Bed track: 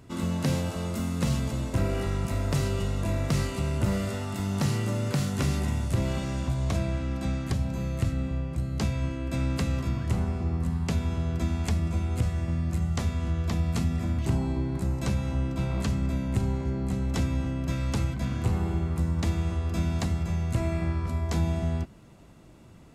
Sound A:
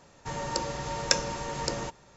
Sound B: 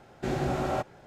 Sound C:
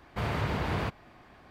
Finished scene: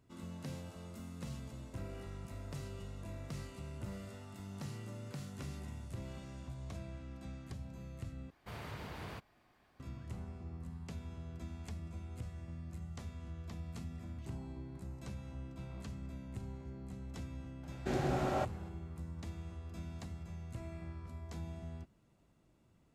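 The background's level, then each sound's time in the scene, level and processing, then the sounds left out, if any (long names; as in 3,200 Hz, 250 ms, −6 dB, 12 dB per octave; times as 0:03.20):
bed track −18 dB
0:08.30: overwrite with C −15.5 dB + high-shelf EQ 5,300 Hz +11 dB
0:17.63: mix in B −5 dB
not used: A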